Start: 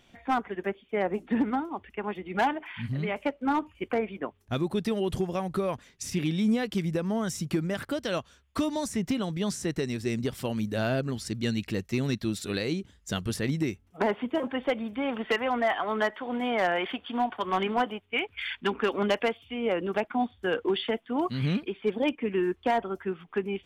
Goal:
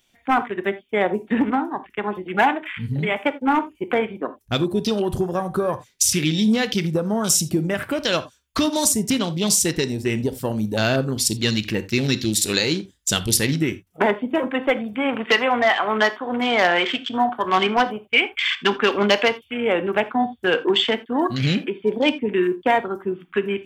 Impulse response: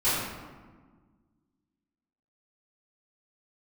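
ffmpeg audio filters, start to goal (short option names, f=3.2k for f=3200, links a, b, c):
-filter_complex "[0:a]crystalizer=i=4.5:c=0,afwtdn=0.0178,asplit=2[a][b];[1:a]atrim=start_sample=2205,afade=t=out:st=0.14:d=0.01,atrim=end_sample=6615[c];[b][c]afir=irnorm=-1:irlink=0,volume=-22.5dB[d];[a][d]amix=inputs=2:normalize=0,volume=6dB"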